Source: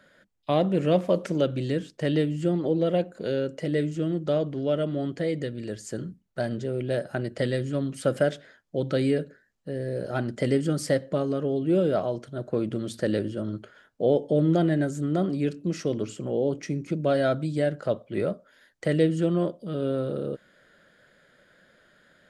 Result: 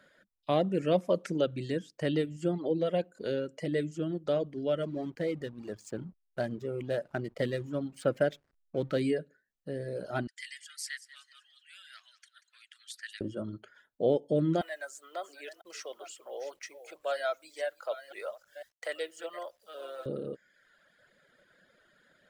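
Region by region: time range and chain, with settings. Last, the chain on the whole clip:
4.82–9.01 s: treble shelf 5.1 kHz -4.5 dB + hysteresis with a dead band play -42 dBFS
10.27–13.21 s: elliptic high-pass 1.7 kHz, stop band 80 dB + feedback delay 187 ms, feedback 37%, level -10.5 dB
14.61–20.06 s: chunks repeated in reverse 502 ms, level -11.5 dB + high-pass 630 Hz 24 dB/octave + word length cut 10-bit, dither none
whole clip: bass shelf 180 Hz -4.5 dB; reverb removal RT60 1 s; trim -3 dB

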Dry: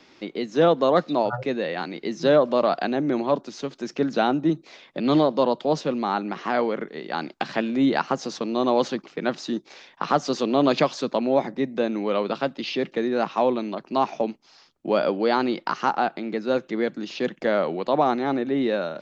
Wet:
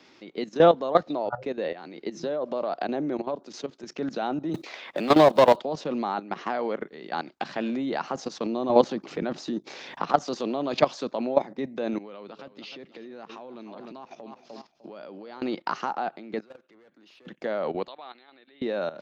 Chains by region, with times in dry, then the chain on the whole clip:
1.03–3.85 s: peaking EQ 430 Hz +4 dB 1.7 oct + compression 2:1, threshold -28 dBFS
4.54–5.60 s: block-companded coder 7-bit + overdrive pedal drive 18 dB, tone 5.6 kHz, clips at -8 dBFS + three bands compressed up and down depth 40%
8.46–10.11 s: bass shelf 480 Hz +7 dB + upward compressor, threshold -24 dBFS
11.98–15.42 s: feedback delay 301 ms, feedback 35%, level -15.5 dB + compression 5:1, threshold -33 dBFS
16.40–17.27 s: overdrive pedal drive 23 dB, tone 2.5 kHz, clips at -10 dBFS + inverted gate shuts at -26 dBFS, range -26 dB
17.88–18.62 s: steep low-pass 4.4 kHz 72 dB/octave + differentiator
whole clip: high-pass 86 Hz 6 dB/octave; dynamic bell 700 Hz, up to +4 dB, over -32 dBFS, Q 1.2; level held to a coarse grid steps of 14 dB

